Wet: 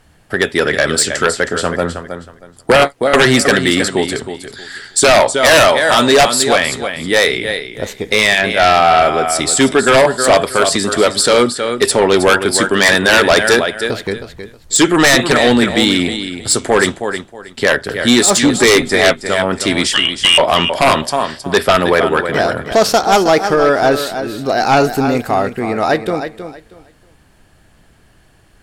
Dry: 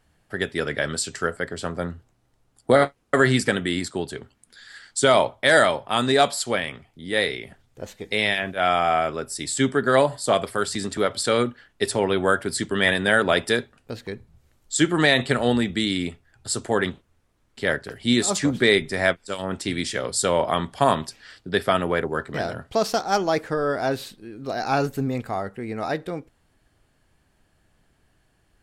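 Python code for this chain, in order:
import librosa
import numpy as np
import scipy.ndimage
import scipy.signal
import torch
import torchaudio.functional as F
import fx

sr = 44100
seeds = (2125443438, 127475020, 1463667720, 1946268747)

y = fx.freq_invert(x, sr, carrier_hz=3400, at=(19.93, 20.38))
y = fx.dynamic_eq(y, sr, hz=120.0, q=0.82, threshold_db=-40.0, ratio=4.0, max_db=-8)
y = fx.echo_feedback(y, sr, ms=317, feedback_pct=22, wet_db=-10.5)
y = fx.fold_sine(y, sr, drive_db=10, ceiling_db=-4.0)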